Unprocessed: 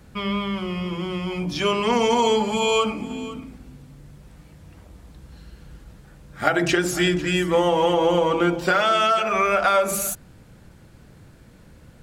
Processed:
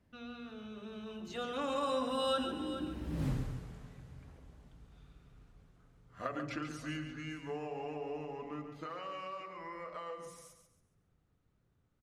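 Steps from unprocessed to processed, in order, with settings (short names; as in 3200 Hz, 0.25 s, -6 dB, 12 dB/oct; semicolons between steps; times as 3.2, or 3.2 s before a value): Doppler pass-by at 3.27, 56 m/s, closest 4 m; high shelf 4500 Hz -7.5 dB; feedback echo 0.139 s, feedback 32%, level -8.5 dB; gain +12.5 dB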